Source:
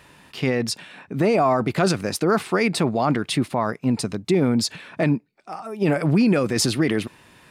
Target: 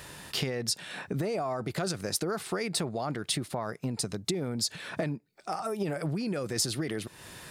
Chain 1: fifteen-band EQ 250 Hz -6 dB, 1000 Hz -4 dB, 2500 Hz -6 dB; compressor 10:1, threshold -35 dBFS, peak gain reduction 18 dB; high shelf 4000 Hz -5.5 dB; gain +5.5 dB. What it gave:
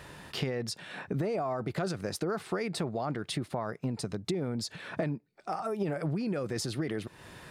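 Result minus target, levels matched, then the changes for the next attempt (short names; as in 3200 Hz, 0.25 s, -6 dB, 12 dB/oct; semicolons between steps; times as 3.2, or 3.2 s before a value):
8000 Hz band -7.5 dB
change: high shelf 4000 Hz +6.5 dB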